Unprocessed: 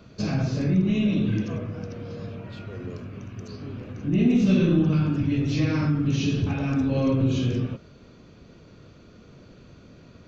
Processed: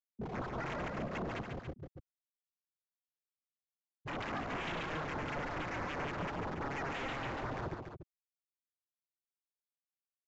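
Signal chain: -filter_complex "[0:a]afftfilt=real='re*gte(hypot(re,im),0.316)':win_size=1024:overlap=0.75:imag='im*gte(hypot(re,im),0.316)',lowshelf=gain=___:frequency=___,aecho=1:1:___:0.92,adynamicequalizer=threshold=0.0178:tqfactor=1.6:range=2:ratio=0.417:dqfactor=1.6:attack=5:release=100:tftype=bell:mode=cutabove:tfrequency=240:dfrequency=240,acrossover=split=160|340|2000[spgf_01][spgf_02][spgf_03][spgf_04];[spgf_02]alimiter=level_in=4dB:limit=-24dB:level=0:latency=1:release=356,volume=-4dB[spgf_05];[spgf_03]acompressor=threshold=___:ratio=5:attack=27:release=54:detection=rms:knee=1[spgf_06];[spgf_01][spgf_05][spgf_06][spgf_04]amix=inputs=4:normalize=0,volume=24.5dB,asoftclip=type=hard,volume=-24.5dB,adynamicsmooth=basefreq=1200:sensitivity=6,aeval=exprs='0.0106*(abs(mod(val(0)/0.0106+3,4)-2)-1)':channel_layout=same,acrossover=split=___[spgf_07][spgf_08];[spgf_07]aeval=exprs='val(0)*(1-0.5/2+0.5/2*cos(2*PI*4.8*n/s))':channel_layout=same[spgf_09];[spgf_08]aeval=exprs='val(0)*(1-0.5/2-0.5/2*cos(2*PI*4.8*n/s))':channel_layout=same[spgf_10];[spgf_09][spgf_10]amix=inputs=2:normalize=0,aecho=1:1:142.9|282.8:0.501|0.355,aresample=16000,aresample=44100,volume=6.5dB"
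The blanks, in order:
-4.5, 140, 2.4, -41dB, 1600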